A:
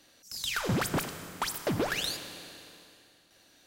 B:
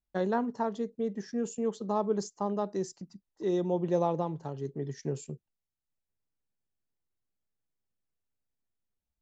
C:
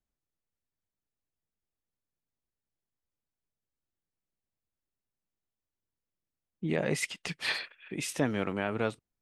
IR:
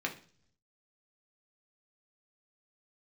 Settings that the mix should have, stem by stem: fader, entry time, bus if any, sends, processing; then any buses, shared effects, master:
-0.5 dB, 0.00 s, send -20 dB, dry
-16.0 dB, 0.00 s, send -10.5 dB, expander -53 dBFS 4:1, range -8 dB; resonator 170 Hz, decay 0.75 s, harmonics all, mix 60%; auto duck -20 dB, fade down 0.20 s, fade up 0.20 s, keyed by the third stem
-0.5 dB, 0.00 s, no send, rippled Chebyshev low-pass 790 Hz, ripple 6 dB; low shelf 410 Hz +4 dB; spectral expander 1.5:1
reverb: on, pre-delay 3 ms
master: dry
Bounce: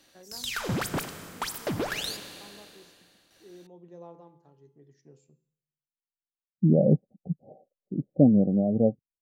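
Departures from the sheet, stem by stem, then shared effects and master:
stem A: send off; stem C -0.5 dB -> +10.5 dB

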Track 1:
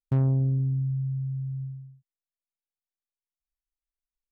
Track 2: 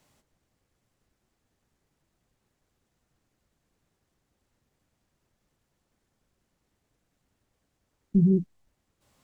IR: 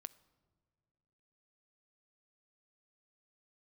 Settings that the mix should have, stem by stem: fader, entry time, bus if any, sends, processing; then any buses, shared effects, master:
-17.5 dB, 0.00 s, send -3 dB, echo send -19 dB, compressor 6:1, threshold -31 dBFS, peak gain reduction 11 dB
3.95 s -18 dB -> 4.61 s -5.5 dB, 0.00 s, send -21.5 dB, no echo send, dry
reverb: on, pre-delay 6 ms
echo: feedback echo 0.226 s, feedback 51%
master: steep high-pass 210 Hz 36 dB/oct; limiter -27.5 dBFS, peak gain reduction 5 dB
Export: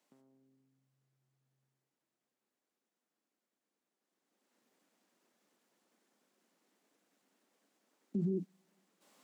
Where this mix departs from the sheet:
stem 1 -17.5 dB -> -27.5 dB; stem 2 -18.0 dB -> -12.0 dB

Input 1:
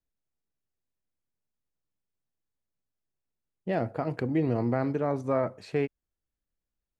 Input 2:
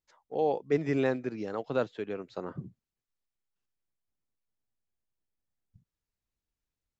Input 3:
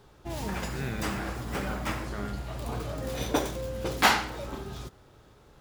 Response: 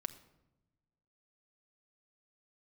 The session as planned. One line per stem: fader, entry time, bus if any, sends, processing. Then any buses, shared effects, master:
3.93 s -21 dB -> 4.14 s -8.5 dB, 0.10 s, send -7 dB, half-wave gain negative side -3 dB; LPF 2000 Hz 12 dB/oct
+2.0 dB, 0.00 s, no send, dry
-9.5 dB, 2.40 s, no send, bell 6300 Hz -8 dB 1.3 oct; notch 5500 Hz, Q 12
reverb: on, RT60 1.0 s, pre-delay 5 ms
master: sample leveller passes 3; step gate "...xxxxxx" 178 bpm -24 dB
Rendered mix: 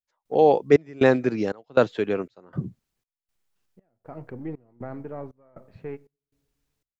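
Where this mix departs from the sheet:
stem 2 +2.0 dB -> +11.0 dB; stem 3: muted; master: missing sample leveller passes 3

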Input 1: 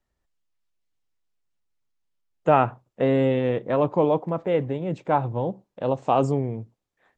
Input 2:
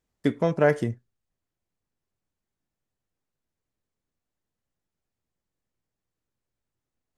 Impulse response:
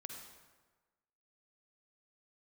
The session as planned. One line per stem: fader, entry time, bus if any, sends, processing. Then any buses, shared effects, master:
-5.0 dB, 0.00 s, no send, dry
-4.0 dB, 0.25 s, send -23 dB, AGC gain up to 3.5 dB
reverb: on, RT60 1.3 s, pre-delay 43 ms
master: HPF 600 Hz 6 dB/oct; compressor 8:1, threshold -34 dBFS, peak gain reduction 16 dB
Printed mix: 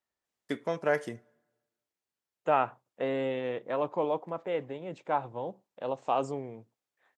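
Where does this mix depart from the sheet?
stem 2: missing AGC gain up to 3.5 dB; master: missing compressor 8:1, threshold -34 dBFS, peak gain reduction 16 dB

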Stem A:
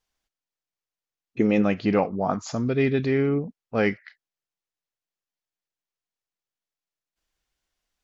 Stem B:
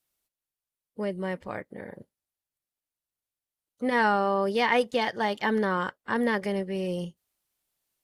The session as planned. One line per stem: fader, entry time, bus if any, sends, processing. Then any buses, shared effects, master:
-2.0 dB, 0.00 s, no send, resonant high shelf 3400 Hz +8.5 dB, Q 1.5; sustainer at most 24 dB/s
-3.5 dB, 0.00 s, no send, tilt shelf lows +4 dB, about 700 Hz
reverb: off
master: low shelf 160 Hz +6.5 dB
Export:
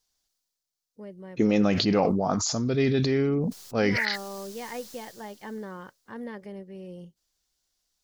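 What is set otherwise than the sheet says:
stem B -3.5 dB -> -13.5 dB; master: missing low shelf 160 Hz +6.5 dB

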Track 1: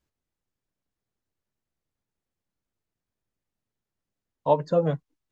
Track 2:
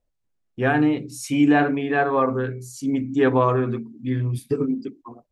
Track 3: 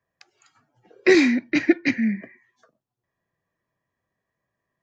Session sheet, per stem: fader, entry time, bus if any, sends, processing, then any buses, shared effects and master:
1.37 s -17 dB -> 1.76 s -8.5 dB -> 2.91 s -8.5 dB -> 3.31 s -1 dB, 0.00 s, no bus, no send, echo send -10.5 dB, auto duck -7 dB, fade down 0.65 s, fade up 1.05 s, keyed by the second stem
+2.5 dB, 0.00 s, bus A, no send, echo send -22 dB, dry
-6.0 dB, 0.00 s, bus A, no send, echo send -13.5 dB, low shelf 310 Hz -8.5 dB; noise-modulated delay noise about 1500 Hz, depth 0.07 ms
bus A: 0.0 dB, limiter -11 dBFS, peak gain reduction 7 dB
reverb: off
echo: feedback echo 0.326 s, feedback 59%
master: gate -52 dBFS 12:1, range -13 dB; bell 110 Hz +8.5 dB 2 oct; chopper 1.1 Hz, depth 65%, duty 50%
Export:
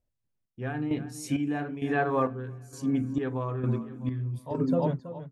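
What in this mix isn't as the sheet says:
stem 2 +2.5 dB -> -7.0 dB; stem 3: muted; master: missing gate -52 dBFS 12:1, range -13 dB

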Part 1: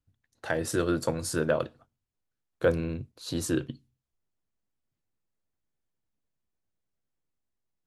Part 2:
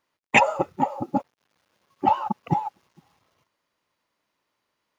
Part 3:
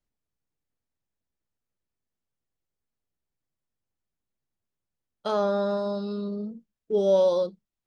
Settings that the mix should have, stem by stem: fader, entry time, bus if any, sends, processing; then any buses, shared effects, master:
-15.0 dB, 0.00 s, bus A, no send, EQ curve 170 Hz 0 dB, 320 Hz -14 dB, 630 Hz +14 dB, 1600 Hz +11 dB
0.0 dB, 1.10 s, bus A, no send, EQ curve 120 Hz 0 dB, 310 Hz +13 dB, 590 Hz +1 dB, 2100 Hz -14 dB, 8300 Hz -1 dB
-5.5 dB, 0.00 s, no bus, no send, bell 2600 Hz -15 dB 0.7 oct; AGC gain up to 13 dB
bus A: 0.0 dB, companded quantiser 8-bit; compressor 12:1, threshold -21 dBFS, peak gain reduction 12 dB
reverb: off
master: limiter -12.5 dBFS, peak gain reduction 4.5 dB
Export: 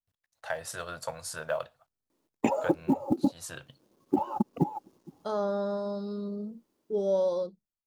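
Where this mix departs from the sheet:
stem 2: entry 1.10 s -> 2.10 s; stem 3 -5.5 dB -> -16.5 dB

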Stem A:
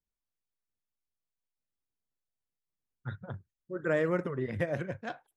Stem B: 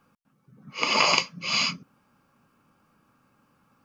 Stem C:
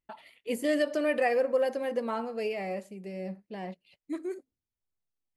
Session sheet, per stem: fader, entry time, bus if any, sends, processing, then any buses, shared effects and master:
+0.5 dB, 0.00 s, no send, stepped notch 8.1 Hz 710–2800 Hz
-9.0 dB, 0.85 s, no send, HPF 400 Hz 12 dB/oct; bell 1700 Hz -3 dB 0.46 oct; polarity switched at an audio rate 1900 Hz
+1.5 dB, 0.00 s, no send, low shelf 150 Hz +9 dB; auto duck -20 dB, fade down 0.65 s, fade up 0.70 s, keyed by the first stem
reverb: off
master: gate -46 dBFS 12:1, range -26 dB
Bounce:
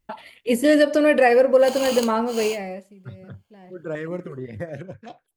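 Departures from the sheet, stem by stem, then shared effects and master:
stem C +1.5 dB -> +10.0 dB; master: missing gate -46 dBFS 12:1, range -26 dB

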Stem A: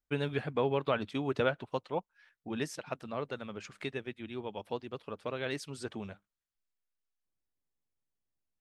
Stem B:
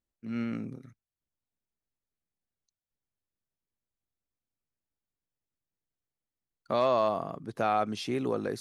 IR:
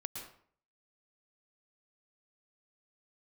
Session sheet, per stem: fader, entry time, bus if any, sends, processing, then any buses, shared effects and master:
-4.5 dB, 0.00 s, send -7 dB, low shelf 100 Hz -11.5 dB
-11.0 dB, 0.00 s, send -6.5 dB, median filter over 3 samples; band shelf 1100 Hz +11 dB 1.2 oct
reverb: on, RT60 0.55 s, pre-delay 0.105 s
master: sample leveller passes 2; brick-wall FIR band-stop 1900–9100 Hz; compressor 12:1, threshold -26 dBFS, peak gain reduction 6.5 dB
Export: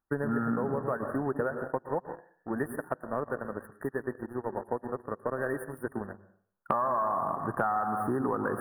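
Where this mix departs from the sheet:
stem B -11.0 dB -> -2.0 dB; reverb return +8.5 dB

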